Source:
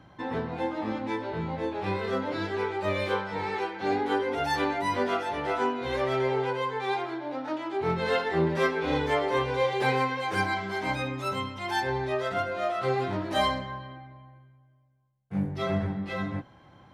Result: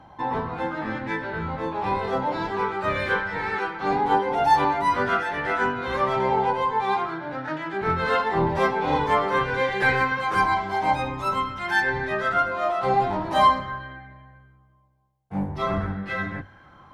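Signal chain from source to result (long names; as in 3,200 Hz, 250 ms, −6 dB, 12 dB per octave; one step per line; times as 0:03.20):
sub-octave generator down 1 octave, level −4 dB
mains-hum notches 50/100 Hz
auto-filter bell 0.46 Hz 830–1,700 Hz +13 dB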